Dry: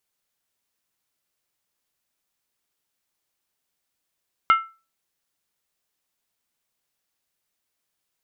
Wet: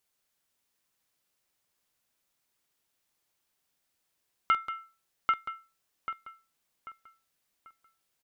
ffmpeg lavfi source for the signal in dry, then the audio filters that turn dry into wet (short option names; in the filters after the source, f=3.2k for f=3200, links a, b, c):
-f lavfi -i "aevalsrc='0.335*pow(10,-3*t/0.31)*sin(2*PI*1330*t)+0.126*pow(10,-3*t/0.246)*sin(2*PI*2120*t)+0.0473*pow(10,-3*t/0.212)*sin(2*PI*2840.9*t)+0.0178*pow(10,-3*t/0.205)*sin(2*PI*3053.7*t)+0.00668*pow(10,-3*t/0.19)*sin(2*PI*3528.5*t)':d=0.63:s=44100"
-filter_complex "[0:a]asplit=2[a][b];[b]adelay=790,lowpass=f=3.3k:p=1,volume=-7.5dB,asplit=2[c][d];[d]adelay=790,lowpass=f=3.3k:p=1,volume=0.36,asplit=2[e][f];[f]adelay=790,lowpass=f=3.3k:p=1,volume=0.36,asplit=2[g][h];[h]adelay=790,lowpass=f=3.3k:p=1,volume=0.36[i];[c][e][g][i]amix=inputs=4:normalize=0[j];[a][j]amix=inputs=2:normalize=0,alimiter=limit=-14dB:level=0:latency=1:release=146,asplit=2[k][l];[l]aecho=0:1:47|184:0.266|0.266[m];[k][m]amix=inputs=2:normalize=0"